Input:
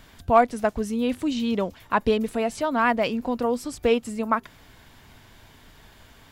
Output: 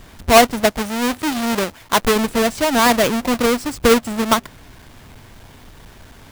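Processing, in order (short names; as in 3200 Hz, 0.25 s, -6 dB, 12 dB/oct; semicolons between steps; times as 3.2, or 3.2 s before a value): half-waves squared off; 0.72–2.16 low shelf 360 Hz -6.5 dB; gain +3.5 dB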